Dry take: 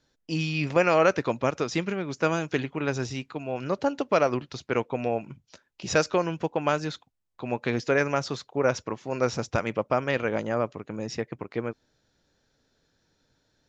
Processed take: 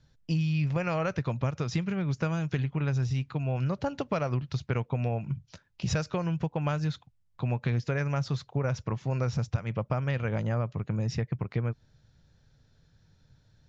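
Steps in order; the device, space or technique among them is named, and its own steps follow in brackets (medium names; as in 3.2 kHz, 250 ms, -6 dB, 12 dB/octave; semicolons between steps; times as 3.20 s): jukebox (low-pass 6.9 kHz 12 dB/octave; resonant low shelf 200 Hz +12.5 dB, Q 1.5; compression 5:1, threshold -26 dBFS, peak gain reduction 15 dB)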